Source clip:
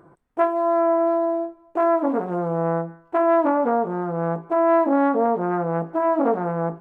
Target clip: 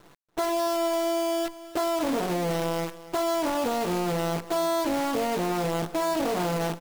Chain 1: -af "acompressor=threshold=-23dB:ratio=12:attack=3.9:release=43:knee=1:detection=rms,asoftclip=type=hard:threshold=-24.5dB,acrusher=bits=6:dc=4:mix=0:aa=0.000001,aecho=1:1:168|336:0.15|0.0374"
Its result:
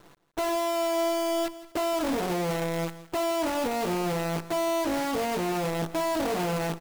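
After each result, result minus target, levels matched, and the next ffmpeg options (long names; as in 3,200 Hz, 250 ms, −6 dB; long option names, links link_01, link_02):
hard clipping: distortion +38 dB; echo 117 ms early
-af "acompressor=threshold=-23dB:ratio=12:attack=3.9:release=43:knee=1:detection=rms,asoftclip=type=hard:threshold=-18dB,acrusher=bits=6:dc=4:mix=0:aa=0.000001,aecho=1:1:168|336:0.15|0.0374"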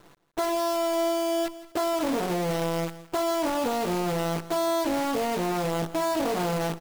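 echo 117 ms early
-af "acompressor=threshold=-23dB:ratio=12:attack=3.9:release=43:knee=1:detection=rms,asoftclip=type=hard:threshold=-18dB,acrusher=bits=6:dc=4:mix=0:aa=0.000001,aecho=1:1:285|570:0.15|0.0374"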